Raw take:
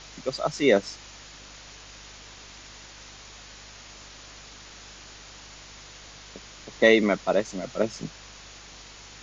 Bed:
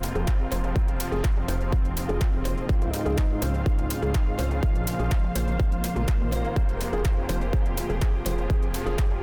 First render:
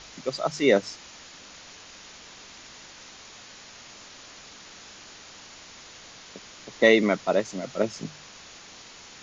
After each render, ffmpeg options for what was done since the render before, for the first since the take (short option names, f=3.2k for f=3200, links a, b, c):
-af "bandreject=f=50:t=h:w=4,bandreject=f=100:t=h:w=4,bandreject=f=150:t=h:w=4"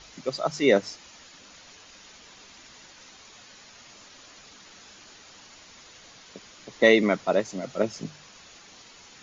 -af "afftdn=nr=6:nf=-47"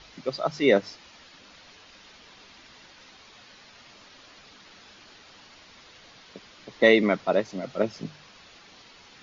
-af "lowpass=f=5.1k:w=0.5412,lowpass=f=5.1k:w=1.3066"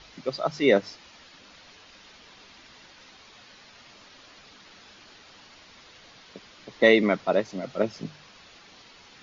-af anull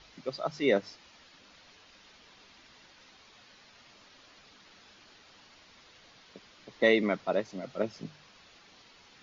-af "volume=-6dB"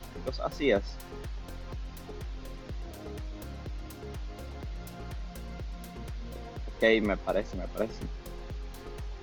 -filter_complex "[1:a]volume=-17dB[a];[0:a][a]amix=inputs=2:normalize=0"